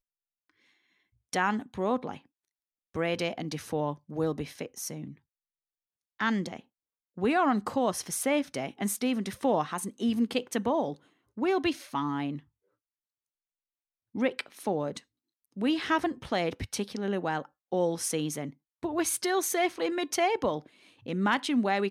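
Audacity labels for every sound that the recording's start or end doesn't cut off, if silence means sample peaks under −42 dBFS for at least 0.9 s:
1.330000	5.130000	sound
6.200000	12.390000	sound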